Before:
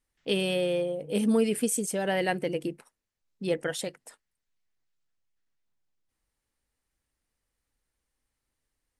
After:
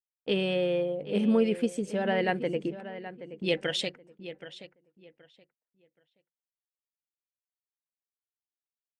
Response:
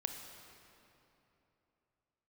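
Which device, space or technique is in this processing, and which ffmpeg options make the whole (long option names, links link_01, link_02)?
hearing-loss simulation: -filter_complex "[0:a]lowpass=3300,agate=range=-33dB:threshold=-48dB:ratio=3:detection=peak,agate=range=-12dB:threshold=-44dB:ratio=16:detection=peak,asplit=3[link_01][link_02][link_03];[link_01]afade=type=out:start_time=3.46:duration=0.02[link_04];[link_02]highshelf=frequency=2000:width_type=q:width=1.5:gain=10.5,afade=type=in:start_time=3.46:duration=0.02,afade=type=out:start_time=3.88:duration=0.02[link_05];[link_03]afade=type=in:start_time=3.88:duration=0.02[link_06];[link_04][link_05][link_06]amix=inputs=3:normalize=0,asplit=2[link_07][link_08];[link_08]adelay=775,lowpass=frequency=3400:poles=1,volume=-13dB,asplit=2[link_09][link_10];[link_10]adelay=775,lowpass=frequency=3400:poles=1,volume=0.23,asplit=2[link_11][link_12];[link_12]adelay=775,lowpass=frequency=3400:poles=1,volume=0.23[link_13];[link_07][link_09][link_11][link_13]amix=inputs=4:normalize=0"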